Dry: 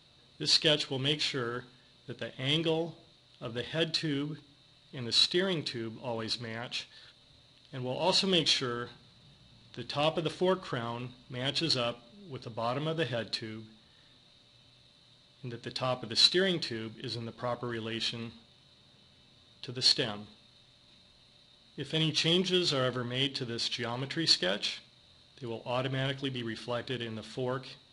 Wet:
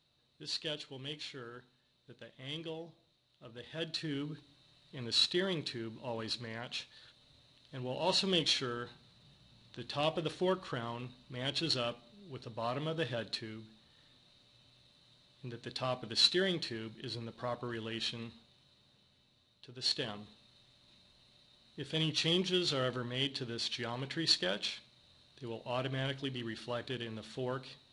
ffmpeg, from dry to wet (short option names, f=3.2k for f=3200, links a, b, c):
-af "volume=4.5dB,afade=t=in:st=3.57:d=0.76:silence=0.354813,afade=t=out:st=18.19:d=1.49:silence=0.375837,afade=t=in:st=19.68:d=0.54:silence=0.375837"